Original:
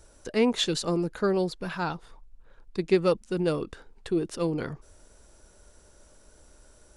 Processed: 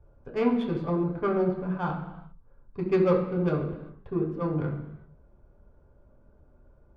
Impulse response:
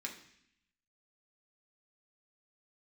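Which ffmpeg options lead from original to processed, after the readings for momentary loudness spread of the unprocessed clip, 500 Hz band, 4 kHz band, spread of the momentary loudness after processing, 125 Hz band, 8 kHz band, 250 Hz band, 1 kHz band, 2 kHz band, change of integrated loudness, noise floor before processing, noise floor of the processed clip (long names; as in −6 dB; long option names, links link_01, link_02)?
14 LU, −0.5 dB, below −15 dB, 13 LU, +4.0 dB, below −25 dB, +1.0 dB, +1.0 dB, −4.5 dB, 0.0 dB, −57 dBFS, −59 dBFS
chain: -filter_complex "[0:a]adynamicsmooth=sensitivity=0.5:basefreq=690[link_01];[1:a]atrim=start_sample=2205,afade=type=out:start_time=0.3:duration=0.01,atrim=end_sample=13671,asetrate=27342,aresample=44100[link_02];[link_01][link_02]afir=irnorm=-1:irlink=0"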